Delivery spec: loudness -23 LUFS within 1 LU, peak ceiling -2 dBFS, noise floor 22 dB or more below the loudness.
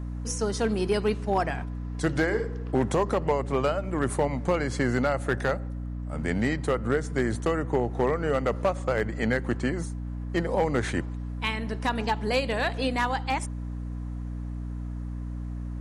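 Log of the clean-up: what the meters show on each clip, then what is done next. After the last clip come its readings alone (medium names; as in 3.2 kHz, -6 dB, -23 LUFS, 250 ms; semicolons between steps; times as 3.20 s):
clipped samples 0.4%; clipping level -16.0 dBFS; hum 60 Hz; highest harmonic 300 Hz; hum level -31 dBFS; loudness -28.0 LUFS; peak level -16.0 dBFS; loudness target -23.0 LUFS
-> clip repair -16 dBFS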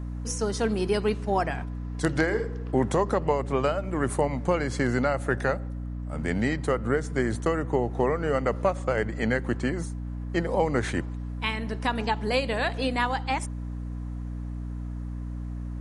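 clipped samples 0.0%; hum 60 Hz; highest harmonic 300 Hz; hum level -31 dBFS
-> hum notches 60/120/180/240/300 Hz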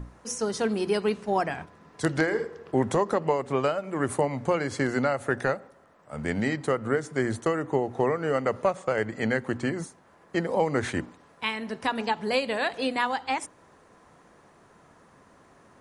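hum not found; loudness -28.0 LUFS; peak level -8.0 dBFS; loudness target -23.0 LUFS
-> trim +5 dB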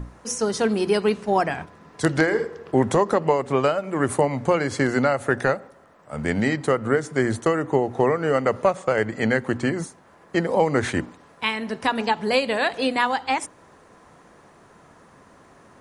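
loudness -23.0 LUFS; peak level -3.0 dBFS; noise floor -52 dBFS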